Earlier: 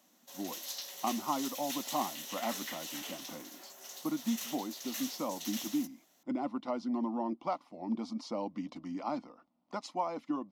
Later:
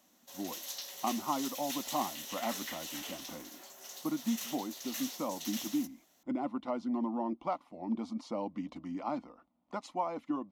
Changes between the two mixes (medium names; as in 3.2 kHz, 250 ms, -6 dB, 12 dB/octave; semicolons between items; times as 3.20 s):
speech: add peaking EQ 5.1 kHz -7.5 dB 0.6 oct; master: remove high-pass 110 Hz 12 dB/octave